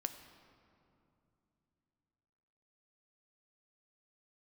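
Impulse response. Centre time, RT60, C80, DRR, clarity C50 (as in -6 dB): 22 ms, 2.8 s, 10.5 dB, 7.5 dB, 9.5 dB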